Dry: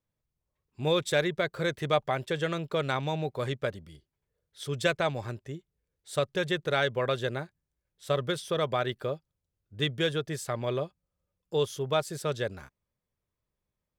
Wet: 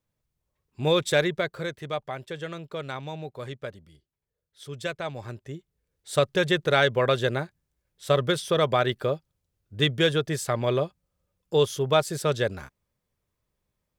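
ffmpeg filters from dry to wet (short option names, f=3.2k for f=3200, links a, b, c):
-af "volume=15dB,afade=t=out:st=1.21:d=0.55:silence=0.354813,afade=t=in:st=5.03:d=1.15:silence=0.281838"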